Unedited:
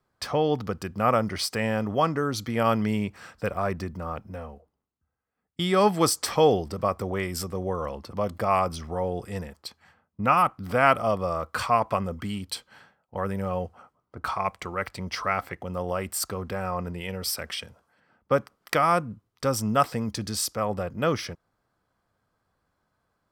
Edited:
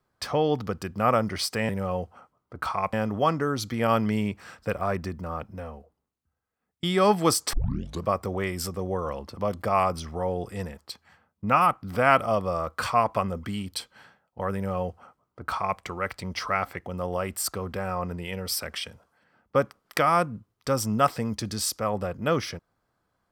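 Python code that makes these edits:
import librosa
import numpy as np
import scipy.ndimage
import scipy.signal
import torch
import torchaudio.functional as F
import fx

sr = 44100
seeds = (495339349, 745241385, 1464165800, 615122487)

y = fx.edit(x, sr, fx.tape_start(start_s=6.29, length_s=0.52),
    fx.duplicate(start_s=13.31, length_s=1.24, to_s=1.69), tone=tone)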